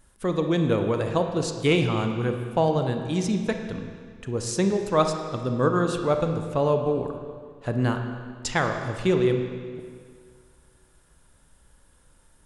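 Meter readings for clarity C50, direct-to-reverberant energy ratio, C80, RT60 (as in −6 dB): 6.0 dB, 5.0 dB, 7.5 dB, 2.0 s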